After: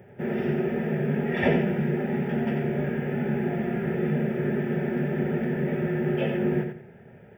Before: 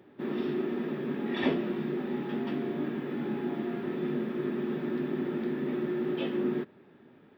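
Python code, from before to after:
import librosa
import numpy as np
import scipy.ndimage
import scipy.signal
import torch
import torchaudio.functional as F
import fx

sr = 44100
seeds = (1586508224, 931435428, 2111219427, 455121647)

y = fx.low_shelf(x, sr, hz=340.0, db=10.5)
y = fx.fixed_phaser(y, sr, hz=1100.0, stages=6)
y = fx.echo_feedback(y, sr, ms=88, feedback_pct=26, wet_db=-6.5)
y = F.gain(torch.from_numpy(y), 7.5).numpy()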